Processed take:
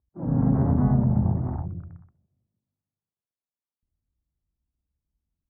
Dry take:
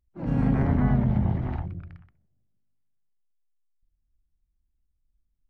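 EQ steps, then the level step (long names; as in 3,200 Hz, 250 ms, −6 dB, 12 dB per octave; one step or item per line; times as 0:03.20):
high-pass filter 94 Hz 12 dB per octave
low-pass filter 1,200 Hz 24 dB per octave
low-shelf EQ 120 Hz +7.5 dB
0.0 dB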